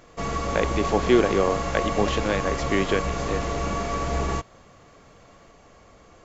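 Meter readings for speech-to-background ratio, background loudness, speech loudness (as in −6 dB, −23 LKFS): 2.5 dB, −28.0 LKFS, −25.5 LKFS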